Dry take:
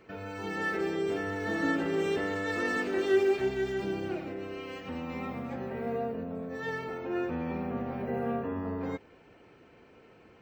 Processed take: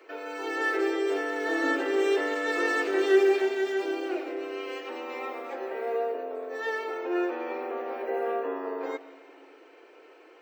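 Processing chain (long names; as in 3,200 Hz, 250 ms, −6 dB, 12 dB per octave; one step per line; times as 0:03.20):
Butterworth high-pass 300 Hz 72 dB per octave
on a send: convolution reverb RT60 2.1 s, pre-delay 112 ms, DRR 15.5 dB
on the sum: level +4.5 dB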